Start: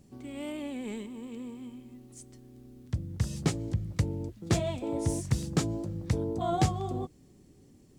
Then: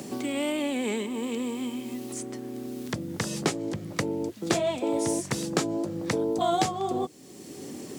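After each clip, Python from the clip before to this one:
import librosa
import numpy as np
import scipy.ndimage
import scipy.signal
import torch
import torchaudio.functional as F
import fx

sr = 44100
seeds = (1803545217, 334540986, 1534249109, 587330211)

y = scipy.signal.sosfilt(scipy.signal.butter(2, 300.0, 'highpass', fs=sr, output='sos'), x)
y = fx.band_squash(y, sr, depth_pct=70)
y = y * librosa.db_to_amplitude(8.5)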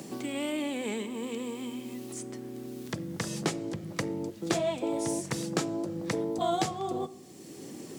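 y = fx.room_shoebox(x, sr, seeds[0], volume_m3=3700.0, walls='furnished', distance_m=0.69)
y = y * librosa.db_to_amplitude(-4.0)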